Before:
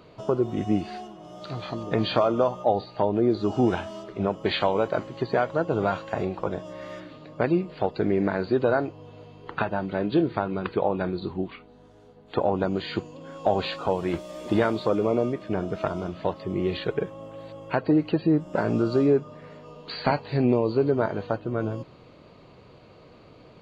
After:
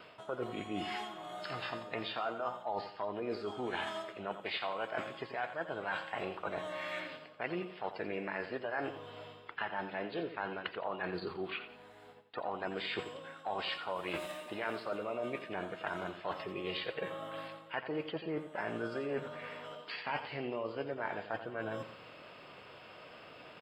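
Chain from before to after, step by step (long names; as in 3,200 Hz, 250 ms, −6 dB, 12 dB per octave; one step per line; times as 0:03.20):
spectral tilt +4 dB per octave
notch filter 5,500 Hz, Q 6.7
formants moved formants +2 semitones
high shelf with overshoot 3,600 Hz −10.5 dB, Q 1.5
reversed playback
downward compressor 5 to 1, threshold −37 dBFS, peak gain reduction 17.5 dB
reversed playback
noise gate with hold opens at −49 dBFS
on a send: repeating echo 87 ms, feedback 36%, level −11 dB
on the sum: level +1 dB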